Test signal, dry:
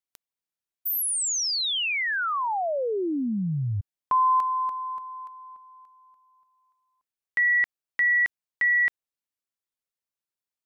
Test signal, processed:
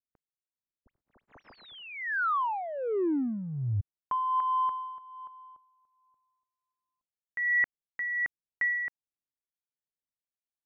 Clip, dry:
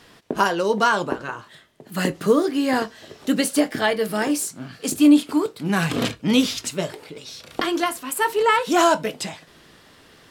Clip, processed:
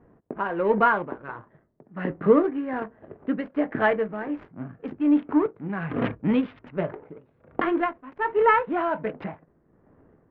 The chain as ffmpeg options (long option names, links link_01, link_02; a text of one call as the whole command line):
ffmpeg -i in.wav -af "adynamicsmooth=sensitivity=4:basefreq=500,tremolo=f=1.3:d=0.67,lowpass=frequency=2100:width=0.5412,lowpass=frequency=2100:width=1.3066" out.wav